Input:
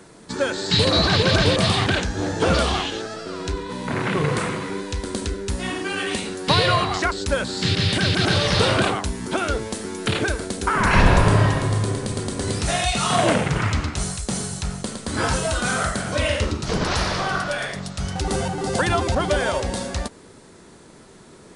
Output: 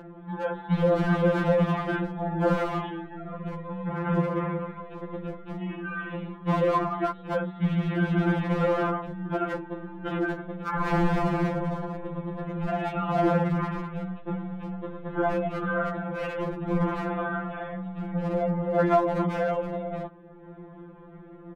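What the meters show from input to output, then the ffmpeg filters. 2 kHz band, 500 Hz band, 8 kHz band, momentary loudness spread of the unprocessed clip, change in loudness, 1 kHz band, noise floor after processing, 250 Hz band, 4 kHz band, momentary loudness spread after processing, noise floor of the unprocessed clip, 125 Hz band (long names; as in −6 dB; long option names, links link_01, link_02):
−10.5 dB, −3.5 dB, below −30 dB, 11 LU, −6.5 dB, −5.5 dB, −46 dBFS, −2.0 dB, −24.0 dB, 13 LU, −46 dBFS, −6.5 dB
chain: -af "aresample=8000,asoftclip=type=hard:threshold=-14.5dB,aresample=44100,lowpass=1100,equalizer=frequency=62:width=2.1:gain=9.5,aeval=exprs='0.178*(abs(mod(val(0)/0.178+3,4)-2)-1)':channel_layout=same,acompressor=mode=upward:threshold=-36dB:ratio=2.5,afftfilt=real='re*2.83*eq(mod(b,8),0)':imag='im*2.83*eq(mod(b,8),0)':win_size=2048:overlap=0.75"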